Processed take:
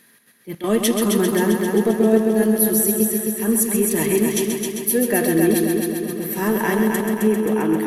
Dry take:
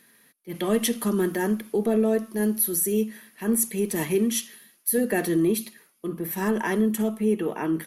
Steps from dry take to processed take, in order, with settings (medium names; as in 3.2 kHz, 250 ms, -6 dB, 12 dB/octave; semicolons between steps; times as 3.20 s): trance gate "xx.xxx.xxxxxxxx" 165 bpm -12 dB; on a send: multi-head delay 132 ms, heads first and second, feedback 66%, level -7 dB; on the sum: trim +4 dB